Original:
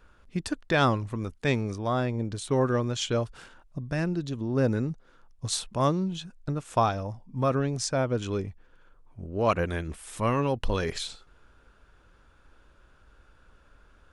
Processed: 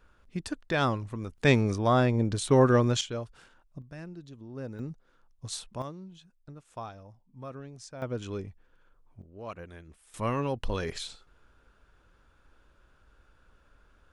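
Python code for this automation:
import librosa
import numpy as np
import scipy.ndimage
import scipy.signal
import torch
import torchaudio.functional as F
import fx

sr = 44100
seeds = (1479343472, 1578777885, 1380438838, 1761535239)

y = fx.gain(x, sr, db=fx.steps((0.0, -4.0), (1.38, 4.0), (3.01, -8.0), (3.82, -14.5), (4.79, -7.5), (5.82, -16.5), (8.02, -6.0), (9.22, -16.5), (10.14, -4.0)))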